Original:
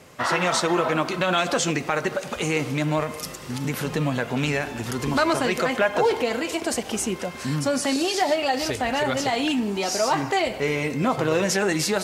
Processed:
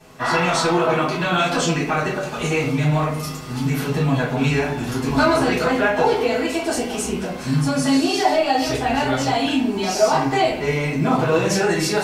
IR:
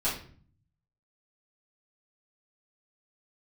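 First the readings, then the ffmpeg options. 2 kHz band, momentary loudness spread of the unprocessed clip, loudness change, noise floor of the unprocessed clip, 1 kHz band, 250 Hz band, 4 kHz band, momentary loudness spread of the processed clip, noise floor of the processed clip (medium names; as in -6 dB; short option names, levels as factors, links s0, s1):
+3.0 dB, 6 LU, +4.0 dB, -37 dBFS, +4.5 dB, +5.0 dB, +2.0 dB, 6 LU, -28 dBFS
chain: -filter_complex "[1:a]atrim=start_sample=2205[s0];[0:a][s0]afir=irnorm=-1:irlink=0,volume=0.562"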